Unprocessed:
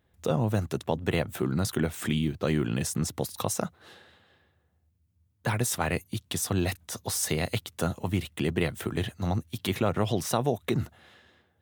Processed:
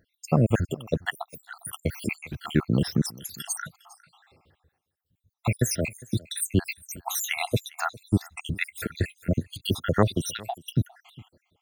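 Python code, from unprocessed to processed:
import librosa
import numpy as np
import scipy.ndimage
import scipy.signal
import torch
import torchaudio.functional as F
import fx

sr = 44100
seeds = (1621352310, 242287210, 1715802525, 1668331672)

y = fx.spec_dropout(x, sr, seeds[0], share_pct=77)
y = fx.dynamic_eq(y, sr, hz=1800.0, q=1.6, threshold_db=-52.0, ratio=4.0, max_db=3)
y = y + 10.0 ** (-22.5 / 20.0) * np.pad(y, (int(405 * sr / 1000.0), 0))[:len(y)]
y = F.gain(torch.from_numpy(y), 7.0).numpy()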